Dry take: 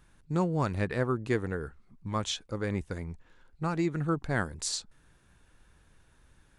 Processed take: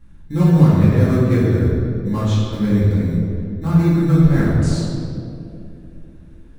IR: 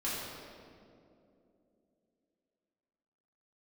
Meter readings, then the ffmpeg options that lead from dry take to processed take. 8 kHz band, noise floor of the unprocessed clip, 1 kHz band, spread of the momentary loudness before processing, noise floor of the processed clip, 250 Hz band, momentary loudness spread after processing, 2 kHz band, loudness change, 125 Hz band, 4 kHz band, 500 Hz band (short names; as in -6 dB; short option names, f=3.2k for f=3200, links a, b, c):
n/a, -64 dBFS, +5.5 dB, 10 LU, -41 dBFS, +17.5 dB, 14 LU, +4.5 dB, +15.5 dB, +19.5 dB, +3.0 dB, +10.5 dB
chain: -filter_complex "[0:a]bass=f=250:g=13,treble=f=4k:g=-3,asplit=2[a][b];[b]acrusher=samples=23:mix=1:aa=0.000001,volume=-9dB[c];[a][c]amix=inputs=2:normalize=0[d];[1:a]atrim=start_sample=2205[e];[d][e]afir=irnorm=-1:irlink=0,volume=-1dB"